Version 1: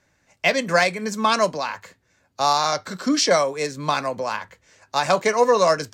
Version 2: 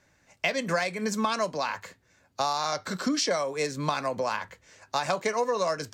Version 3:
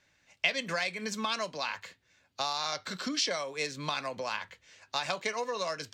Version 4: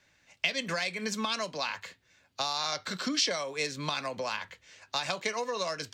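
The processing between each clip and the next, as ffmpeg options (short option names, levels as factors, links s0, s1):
-af "acompressor=threshold=0.0631:ratio=6"
-af "equalizer=f=3200:t=o:w=1.6:g=11.5,volume=0.376"
-filter_complex "[0:a]acrossover=split=370|3000[s0][s1][s2];[s1]acompressor=threshold=0.0224:ratio=6[s3];[s0][s3][s2]amix=inputs=3:normalize=0,volume=1.33"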